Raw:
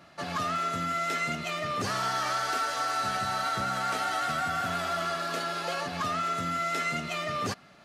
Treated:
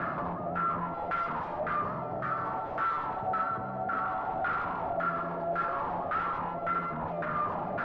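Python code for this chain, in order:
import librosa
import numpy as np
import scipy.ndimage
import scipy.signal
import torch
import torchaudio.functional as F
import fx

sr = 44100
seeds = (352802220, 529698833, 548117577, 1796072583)

p1 = scipy.signal.sosfilt(scipy.signal.butter(2, 74.0, 'highpass', fs=sr, output='sos'), x)
p2 = fx.tilt_shelf(p1, sr, db=3.5, hz=1100.0)
p3 = fx.over_compress(p2, sr, threshold_db=-42.0, ratio=-1.0)
p4 = p3 + fx.echo_filtered(p3, sr, ms=281, feedback_pct=63, hz=4500.0, wet_db=-5.5, dry=0)
p5 = fx.rotary(p4, sr, hz=0.6)
p6 = fx.fold_sine(p5, sr, drive_db=14, ceiling_db=-28.0)
p7 = fx.filter_lfo_lowpass(p6, sr, shape='saw_down', hz=1.8, low_hz=710.0, high_hz=1500.0, q=3.9)
y = p7 * librosa.db_to_amplitude(-5.5)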